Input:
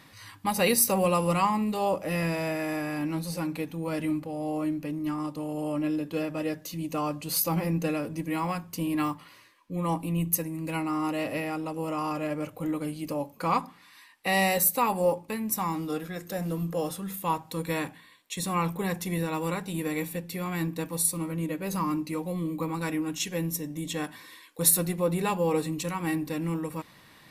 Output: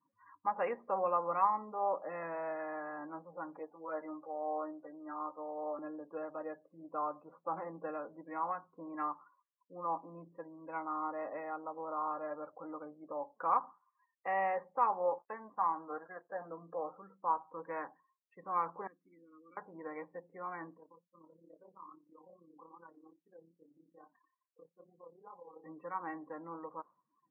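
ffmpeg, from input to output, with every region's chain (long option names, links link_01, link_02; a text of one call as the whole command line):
ffmpeg -i in.wav -filter_complex "[0:a]asettb=1/sr,asplit=3[link_01][link_02][link_03];[link_01]atrim=end=3.594[link_04];[link_02]atrim=start=3.59:end=5.79,asetpts=PTS-STARTPTS,afade=type=in:duration=0.004:curve=qsin,afade=type=out:start_time=2.196:duration=0.004:curve=qsin,acrossover=split=320 2600:gain=0.2 1 0.2[link_05][link_06][link_07];[link_05][link_06][link_07]amix=inputs=3:normalize=0,asplit=2[link_08][link_09];[link_09]adelay=13,volume=-2.5dB[link_10];[link_08][link_10]amix=inputs=2:normalize=0,atrim=end_sample=97020[link_11];[link_03]atrim=start=5.786[link_12];[link_04][link_11]acrossfade=duration=0.004:curve1=hsin:curve2=qsin[link_13];[link_13][link_12]acrossfade=duration=0.004:curve1=qsin:curve2=hsin,asettb=1/sr,asplit=3[link_14][link_15][link_16];[link_14]atrim=end=15.184[link_17];[link_15]atrim=start=15.18:end=16.5,asetpts=PTS-STARTPTS,afade=type=in:duration=0.004:curve=qsin,afade=type=out:start_time=1.316:duration=0.004:curve=qsin,equalizer=frequency=1200:width_type=o:width=1.9:gain=4.5,bandreject=frequency=1300:width=12,aeval=exprs='sgn(val(0))*max(abs(val(0))-0.00562,0)':channel_layout=same[link_18];[link_16]atrim=start=16.496[link_19];[link_17][link_18]acrossfade=duration=0.004:curve1=hsin:curve2=qsin[link_20];[link_20][link_19]acrossfade=duration=0.004:curve1=qsin:curve2=hsin,asettb=1/sr,asplit=3[link_21][link_22][link_23];[link_21]atrim=end=18.874[link_24];[link_22]atrim=start=18.87:end=19.57,asetpts=PTS-STARTPTS,afade=type=in:duration=0.004:curve=qsin,afade=type=out:start_time=0.696:duration=0.004:curve=qsin,asplit=3[link_25][link_26][link_27];[link_25]bandpass=frequency=270:width_type=q:width=8,volume=0dB[link_28];[link_26]bandpass=frequency=2290:width_type=q:width=8,volume=-6dB[link_29];[link_27]bandpass=frequency=3010:width_type=q:width=8,volume=-9dB[link_30];[link_28][link_29][link_30]amix=inputs=3:normalize=0,equalizer=frequency=1200:width=3.9:gain=13[link_31];[link_23]atrim=start=19.566[link_32];[link_24][link_31]acrossfade=duration=0.004:curve1=hsin:curve2=qsin[link_33];[link_33][link_32]acrossfade=duration=0.004:curve1=qsin:curve2=hsin,asettb=1/sr,asplit=3[link_34][link_35][link_36];[link_34]atrim=end=20.774[link_37];[link_35]atrim=start=20.77:end=25.64,asetpts=PTS-STARTPTS,afade=type=in:duration=0.004:curve=qsin,afade=type=out:start_time=4.866:duration=0.004:curve=qsin,acompressor=threshold=-39dB:ratio=3:attack=3.2:release=140:knee=1:detection=peak,flanger=delay=17.5:depth=7.7:speed=2.4,tremolo=f=34:d=0.571[link_38];[link_36]atrim=start=25.636[link_39];[link_37][link_38]acrossfade=duration=0.004:curve1=hsin:curve2=qsin[link_40];[link_40][link_39]acrossfade=duration=0.004:curve1=qsin:curve2=hsin,lowpass=frequency=1500:width=0.5412,lowpass=frequency=1500:width=1.3066,afftdn=noise_reduction=35:noise_floor=-47,highpass=710,volume=-2.5dB" out.wav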